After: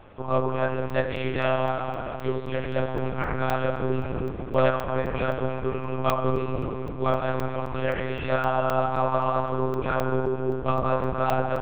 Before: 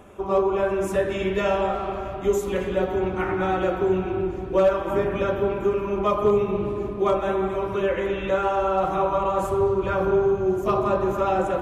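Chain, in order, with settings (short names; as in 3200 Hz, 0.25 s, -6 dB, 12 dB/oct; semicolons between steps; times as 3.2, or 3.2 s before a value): bell 420 Hz -7 dB 0.47 oct; monotone LPC vocoder at 8 kHz 130 Hz; crackling interface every 0.26 s, samples 128, zero, from 0.9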